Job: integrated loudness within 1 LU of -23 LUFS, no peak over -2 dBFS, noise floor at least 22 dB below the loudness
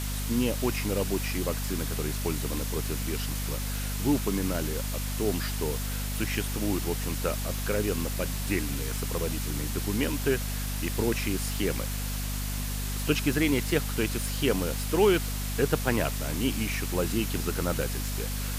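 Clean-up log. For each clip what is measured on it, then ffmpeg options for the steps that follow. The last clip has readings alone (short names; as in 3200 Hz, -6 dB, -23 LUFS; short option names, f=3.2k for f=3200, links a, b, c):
hum 50 Hz; harmonics up to 250 Hz; hum level -30 dBFS; noise floor -32 dBFS; noise floor target -51 dBFS; loudness -29.0 LUFS; peak -9.0 dBFS; loudness target -23.0 LUFS
-> -af "bandreject=f=50:t=h:w=6,bandreject=f=100:t=h:w=6,bandreject=f=150:t=h:w=6,bandreject=f=200:t=h:w=6,bandreject=f=250:t=h:w=6"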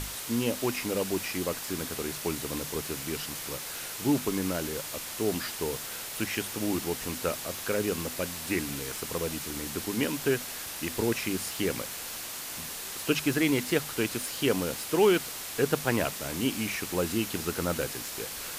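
hum none; noise floor -39 dBFS; noise floor target -53 dBFS
-> -af "afftdn=nr=14:nf=-39"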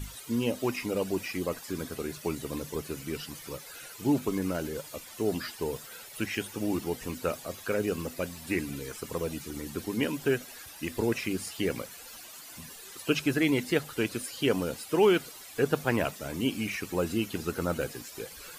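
noise floor -47 dBFS; noise floor target -54 dBFS
-> -af "afftdn=nr=7:nf=-47"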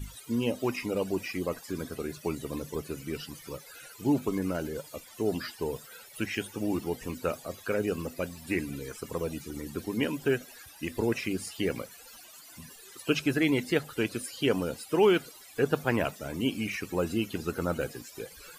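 noise floor -51 dBFS; noise floor target -54 dBFS
-> -af "afftdn=nr=6:nf=-51"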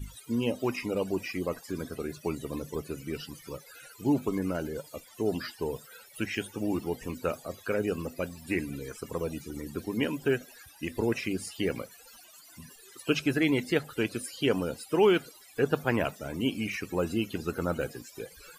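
noise floor -54 dBFS; loudness -31.5 LUFS; peak -9.5 dBFS; loudness target -23.0 LUFS
-> -af "volume=8.5dB,alimiter=limit=-2dB:level=0:latency=1"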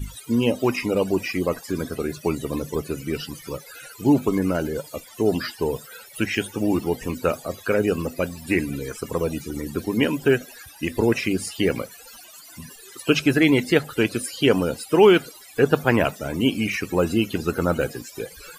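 loudness -23.0 LUFS; peak -2.0 dBFS; noise floor -45 dBFS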